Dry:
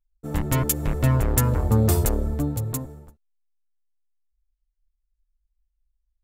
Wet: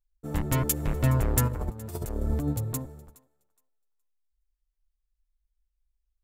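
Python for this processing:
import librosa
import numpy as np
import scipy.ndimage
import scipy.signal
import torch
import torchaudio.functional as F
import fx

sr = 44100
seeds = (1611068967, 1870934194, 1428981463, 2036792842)

p1 = fx.over_compress(x, sr, threshold_db=-25.0, ratio=-0.5, at=(1.47, 2.52), fade=0.02)
p2 = p1 + fx.echo_thinned(p1, sr, ms=418, feedback_pct=19, hz=660.0, wet_db=-22.0, dry=0)
y = p2 * librosa.db_to_amplitude(-3.5)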